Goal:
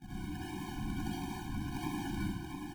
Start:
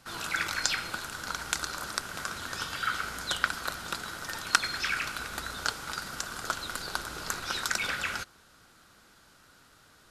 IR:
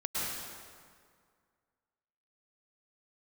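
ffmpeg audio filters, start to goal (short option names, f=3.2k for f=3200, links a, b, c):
-filter_complex "[0:a]asuperpass=centerf=490:order=4:qfactor=5.6,asetrate=162288,aresample=44100,acrusher=samples=41:mix=1:aa=0.000001:lfo=1:lforange=24.6:lforate=1.5,aecho=1:1:678:0.531[a];[1:a]atrim=start_sample=2205,asetrate=74970,aresample=44100[b];[a][b]afir=irnorm=-1:irlink=0,afftfilt=real='re*eq(mod(floor(b*sr/1024/360),2),0)':imag='im*eq(mod(floor(b*sr/1024/360),2),0)':win_size=1024:overlap=0.75,volume=17dB"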